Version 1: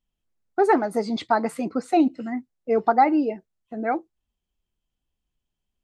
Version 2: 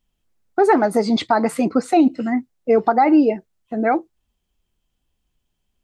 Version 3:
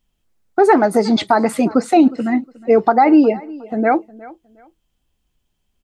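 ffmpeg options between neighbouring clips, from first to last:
ffmpeg -i in.wav -af "alimiter=limit=-15dB:level=0:latency=1:release=86,volume=8.5dB" out.wav
ffmpeg -i in.wav -af "aecho=1:1:361|722:0.0891|0.0223,volume=3dB" out.wav

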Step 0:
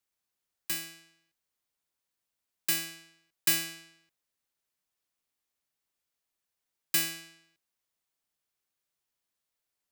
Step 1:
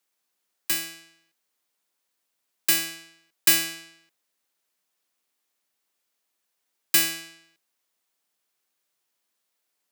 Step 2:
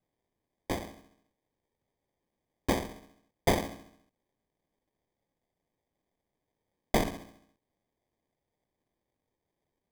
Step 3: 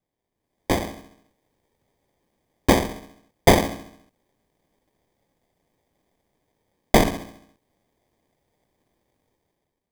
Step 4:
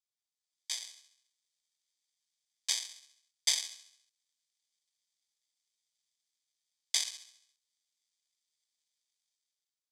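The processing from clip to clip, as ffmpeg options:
ffmpeg -i in.wav -af "highpass=210,volume=7.5dB" out.wav
ffmpeg -i in.wav -af "acrusher=samples=32:mix=1:aa=0.000001,volume=-6.5dB" out.wav
ffmpeg -i in.wav -af "dynaudnorm=framelen=100:gausssize=11:maxgain=12.5dB" out.wav
ffmpeg -i in.wav -af "asuperpass=centerf=5800:order=4:qfactor=1.2" out.wav

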